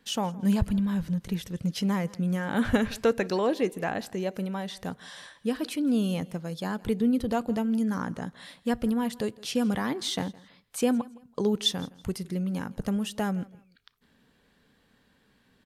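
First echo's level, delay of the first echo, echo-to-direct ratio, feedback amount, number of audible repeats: −22.0 dB, 164 ms, −21.5 dB, 28%, 2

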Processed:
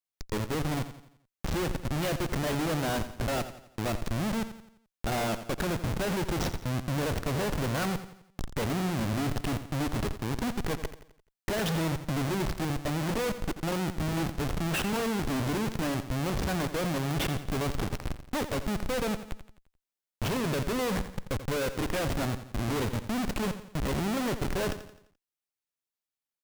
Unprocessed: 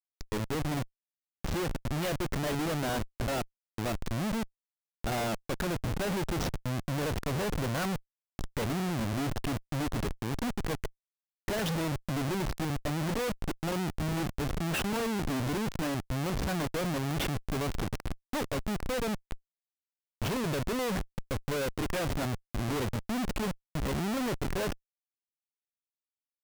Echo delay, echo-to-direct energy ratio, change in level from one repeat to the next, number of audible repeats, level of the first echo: 86 ms, −11.0 dB, −7.0 dB, 4, −12.0 dB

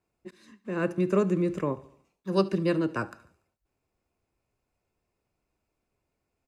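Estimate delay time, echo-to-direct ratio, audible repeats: 72 ms, −19.0 dB, 3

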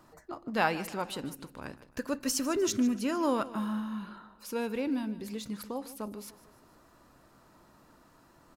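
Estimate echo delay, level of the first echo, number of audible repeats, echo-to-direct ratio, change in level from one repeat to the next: 151 ms, −17.0 dB, 3, −16.0 dB, −6.0 dB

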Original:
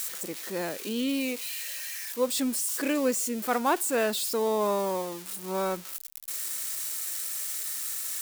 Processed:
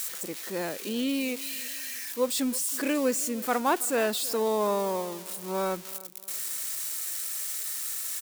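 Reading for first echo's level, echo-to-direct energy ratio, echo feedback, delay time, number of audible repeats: −20.0 dB, −19.5 dB, 36%, 324 ms, 2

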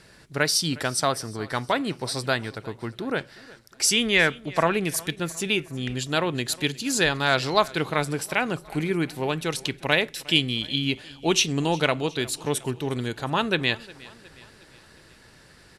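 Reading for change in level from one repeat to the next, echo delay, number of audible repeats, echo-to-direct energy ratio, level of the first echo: −5.5 dB, 360 ms, 3, −20.0 dB, −21.5 dB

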